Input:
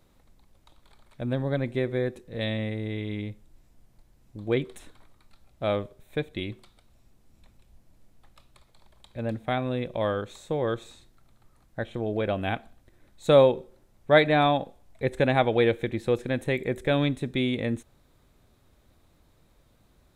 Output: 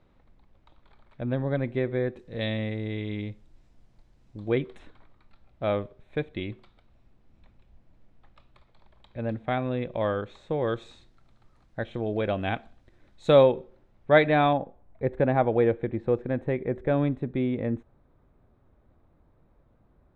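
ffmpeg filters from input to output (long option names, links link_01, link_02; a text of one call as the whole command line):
ffmpeg -i in.wav -af "asetnsamples=nb_out_samples=441:pad=0,asendcmd='2.19 lowpass f 5300;4.52 lowpass f 2900;10.62 lowpass f 4900;13.43 lowpass f 2900;14.53 lowpass f 1300',lowpass=2700" out.wav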